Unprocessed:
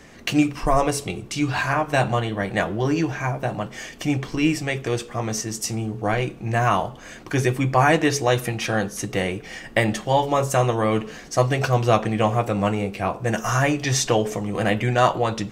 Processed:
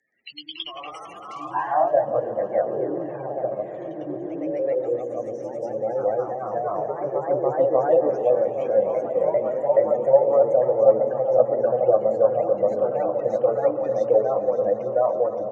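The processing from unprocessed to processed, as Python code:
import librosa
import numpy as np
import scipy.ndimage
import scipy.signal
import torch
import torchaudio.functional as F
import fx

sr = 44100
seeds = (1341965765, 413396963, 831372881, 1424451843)

p1 = fx.spec_gate(x, sr, threshold_db=-10, keep='strong')
p2 = fx.echo_pitch(p1, sr, ms=123, semitones=1, count=3, db_per_echo=-3.0)
p3 = p2 + fx.echo_alternate(p2, sr, ms=141, hz=810.0, feedback_pct=90, wet_db=-10.5, dry=0)
p4 = fx.filter_sweep_bandpass(p3, sr, from_hz=7000.0, to_hz=540.0, start_s=0.01, end_s=2.02, q=7.0)
y = F.gain(torch.from_numpy(p4), 8.0).numpy()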